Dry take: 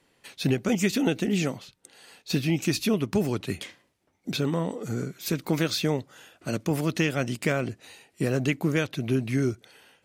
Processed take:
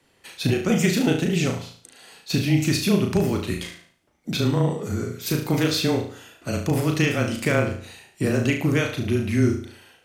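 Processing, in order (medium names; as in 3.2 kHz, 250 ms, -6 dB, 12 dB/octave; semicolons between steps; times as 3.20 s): flutter echo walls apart 6.2 m, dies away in 0.48 s; frequency shift -19 Hz; trim +2.5 dB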